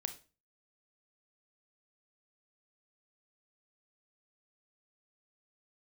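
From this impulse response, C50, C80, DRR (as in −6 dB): 13.0 dB, 18.5 dB, 8.0 dB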